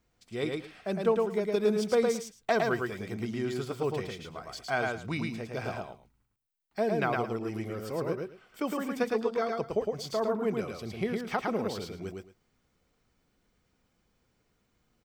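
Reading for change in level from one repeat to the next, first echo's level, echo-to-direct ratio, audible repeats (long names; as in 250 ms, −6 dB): −15.0 dB, −3.0 dB, −3.0 dB, 2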